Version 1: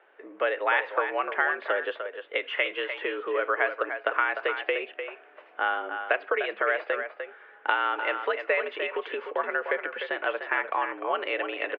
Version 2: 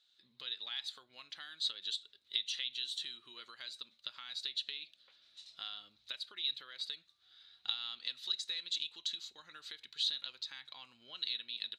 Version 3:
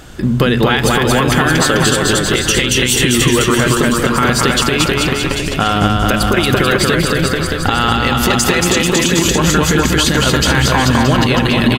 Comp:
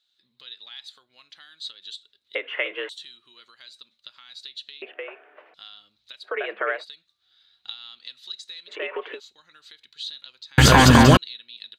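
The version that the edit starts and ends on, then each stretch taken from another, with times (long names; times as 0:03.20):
2
0:02.35–0:02.89: punch in from 1
0:04.82–0:05.54: punch in from 1
0:06.30–0:06.78: punch in from 1, crossfade 0.16 s
0:08.72–0:09.16: punch in from 1, crossfade 0.10 s
0:10.58–0:11.17: punch in from 3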